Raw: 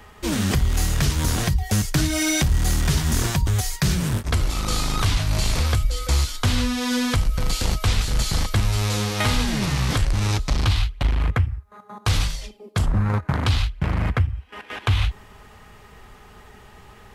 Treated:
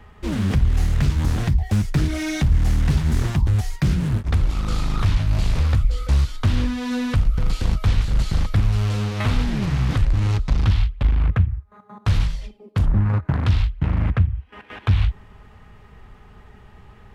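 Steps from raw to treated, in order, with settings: tone controls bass +7 dB, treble -9 dB; loudspeaker Doppler distortion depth 0.63 ms; trim -4 dB

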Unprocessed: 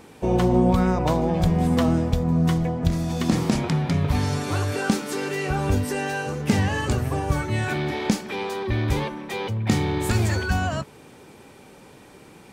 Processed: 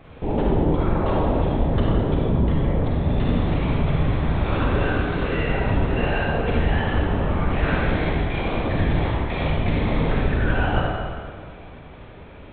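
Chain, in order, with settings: compression, threshold -22 dBFS, peak gain reduction 8.5 dB; LPC vocoder at 8 kHz whisper; reverberation RT60 2.0 s, pre-delay 33 ms, DRR -4.5 dB

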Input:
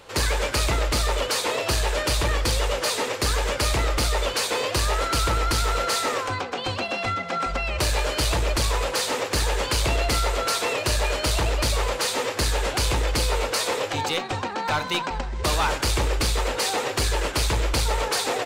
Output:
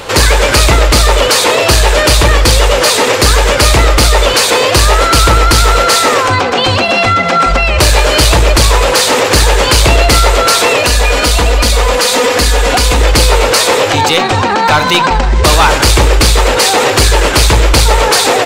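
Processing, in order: 10.83–13.00 s: comb 4.1 ms, depth 55%; loudness maximiser +23.5 dB; trim -1 dB

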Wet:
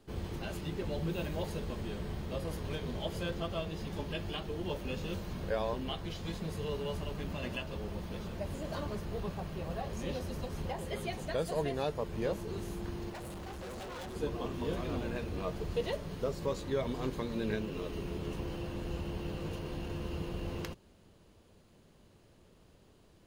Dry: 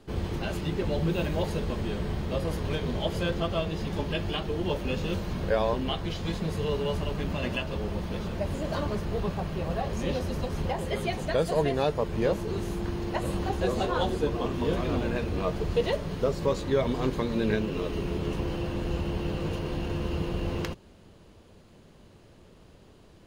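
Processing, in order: 13.10–14.16 s: overload inside the chain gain 33.5 dB; treble shelf 8 kHz +7 dB; trim -8 dB

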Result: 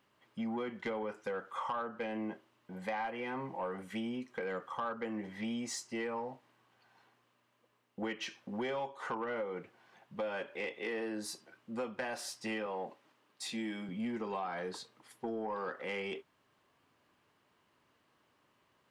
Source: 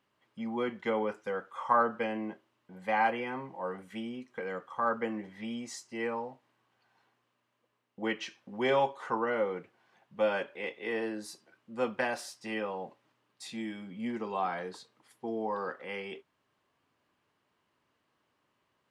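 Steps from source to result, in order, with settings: 12.66–13.89 s: high-pass 190 Hz 12 dB/octave; compression 8:1, threshold -37 dBFS, peak gain reduction 16 dB; saturation -32 dBFS, distortion -20 dB; trim +4 dB

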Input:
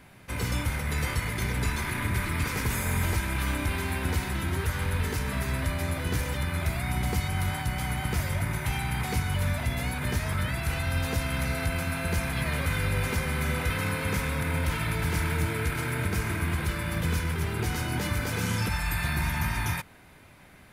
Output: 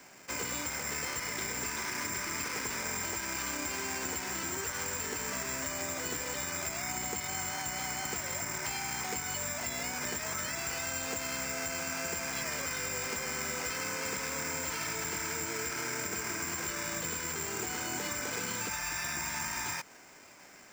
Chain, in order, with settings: careless resampling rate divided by 6×, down filtered, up zero stuff; three-band isolator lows -19 dB, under 240 Hz, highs -20 dB, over 5.4 kHz; compression, threshold -32 dBFS, peak gain reduction 6.5 dB

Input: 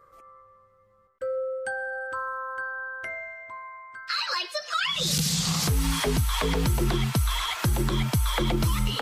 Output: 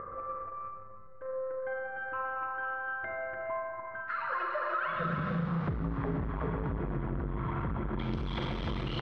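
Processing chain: upward compressor, threshold -31 dBFS; low-pass 1.6 kHz 24 dB/octave, from 7.99 s 3.9 kHz; multi-tap echo 291/297/414 ms -8.5/-5.5/-13.5 dB; Schroeder reverb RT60 2.9 s, combs from 32 ms, DRR 0 dB; compression 6:1, threshold -28 dBFS, peak gain reduction 13 dB; transformer saturation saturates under 260 Hz

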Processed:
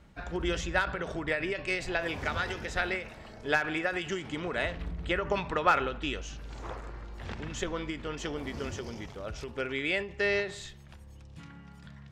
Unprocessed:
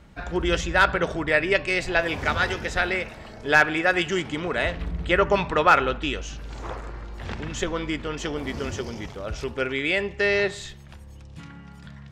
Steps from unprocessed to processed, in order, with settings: endings held to a fixed fall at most 120 dB/s; trim -6 dB

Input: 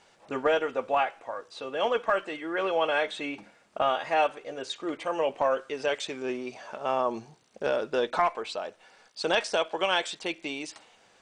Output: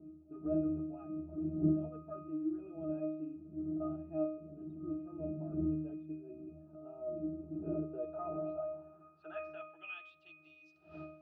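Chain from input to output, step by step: wind noise 400 Hz -30 dBFS; pitch-class resonator D#, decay 0.66 s; band-pass sweep 270 Hz -> 4.8 kHz, 7.44–10.59 s; trim +14.5 dB

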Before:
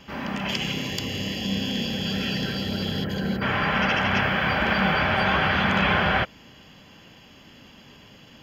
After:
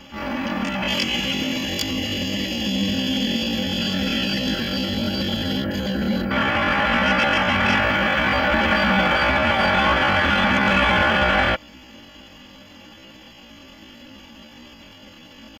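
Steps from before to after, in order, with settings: comb 3.5 ms, depth 65%; in parallel at -3.5 dB: saturation -20.5 dBFS, distortion -12 dB; on the sum: tempo 0.54×

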